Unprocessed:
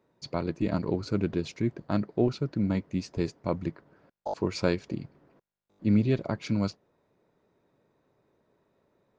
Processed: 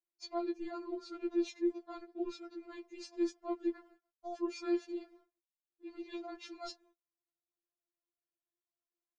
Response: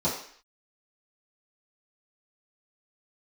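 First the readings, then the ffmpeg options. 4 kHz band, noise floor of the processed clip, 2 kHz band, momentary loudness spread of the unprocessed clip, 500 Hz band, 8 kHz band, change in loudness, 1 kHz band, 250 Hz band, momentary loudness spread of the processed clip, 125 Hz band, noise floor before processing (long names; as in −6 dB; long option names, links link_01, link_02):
−8.0 dB, below −85 dBFS, −12.0 dB, 10 LU, −8.0 dB, can't be measured, −9.5 dB, −7.5 dB, −9.5 dB, 14 LU, below −40 dB, −74 dBFS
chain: -af "agate=range=-31dB:threshold=-56dB:ratio=16:detection=peak,areverse,acompressor=threshold=-34dB:ratio=5,areverse,afftfilt=real='re*4*eq(mod(b,16),0)':imag='im*4*eq(mod(b,16),0)':win_size=2048:overlap=0.75,volume=1.5dB"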